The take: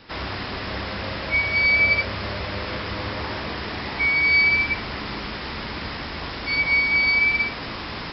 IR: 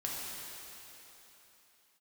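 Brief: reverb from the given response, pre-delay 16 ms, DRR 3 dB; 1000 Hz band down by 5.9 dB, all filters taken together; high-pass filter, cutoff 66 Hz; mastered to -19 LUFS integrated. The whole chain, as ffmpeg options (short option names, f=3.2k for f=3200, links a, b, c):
-filter_complex "[0:a]highpass=66,equalizer=f=1k:t=o:g=-7.5,asplit=2[a][b];[1:a]atrim=start_sample=2205,adelay=16[c];[b][c]afir=irnorm=-1:irlink=0,volume=-6.5dB[d];[a][d]amix=inputs=2:normalize=0,volume=1.5dB"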